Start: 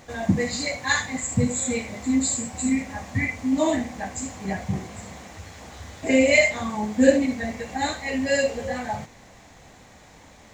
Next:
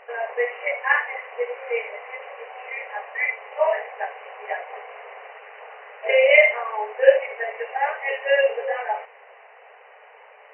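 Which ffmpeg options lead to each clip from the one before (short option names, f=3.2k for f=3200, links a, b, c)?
-af "afftfilt=real='re*between(b*sr/4096,400,3000)':imag='im*between(b*sr/4096,400,3000)':win_size=4096:overlap=0.75,volume=4dB"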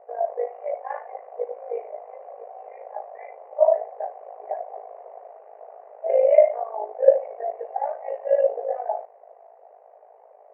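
-af "tremolo=f=53:d=0.71,lowpass=f=670:t=q:w=4.9,volume=-6dB"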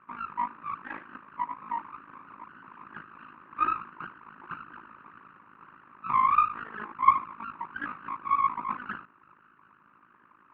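-af "aeval=exprs='abs(val(0))':c=same,highpass=360,equalizer=f=470:t=q:w=4:g=-8,equalizer=f=660:t=q:w=4:g=-4,equalizer=f=950:t=q:w=4:g=4,equalizer=f=1.4k:t=q:w=4:g=-9,lowpass=f=2k:w=0.5412,lowpass=f=2k:w=1.3066,volume=2.5dB"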